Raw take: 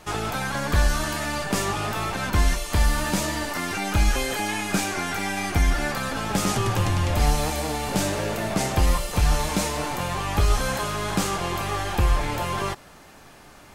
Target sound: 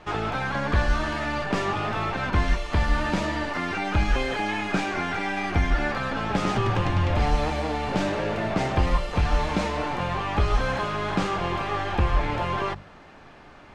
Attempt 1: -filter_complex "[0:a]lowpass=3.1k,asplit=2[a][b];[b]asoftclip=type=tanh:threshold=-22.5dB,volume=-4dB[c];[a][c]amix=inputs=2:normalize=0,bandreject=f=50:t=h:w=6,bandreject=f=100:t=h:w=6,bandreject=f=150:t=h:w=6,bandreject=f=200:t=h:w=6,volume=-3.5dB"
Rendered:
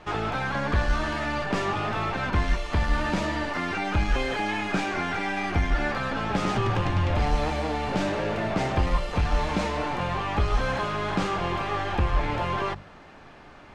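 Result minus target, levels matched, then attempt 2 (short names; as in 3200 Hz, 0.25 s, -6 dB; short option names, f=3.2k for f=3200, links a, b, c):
soft clip: distortion +14 dB
-filter_complex "[0:a]lowpass=3.1k,asplit=2[a][b];[b]asoftclip=type=tanh:threshold=-11dB,volume=-4dB[c];[a][c]amix=inputs=2:normalize=0,bandreject=f=50:t=h:w=6,bandreject=f=100:t=h:w=6,bandreject=f=150:t=h:w=6,bandreject=f=200:t=h:w=6,volume=-3.5dB"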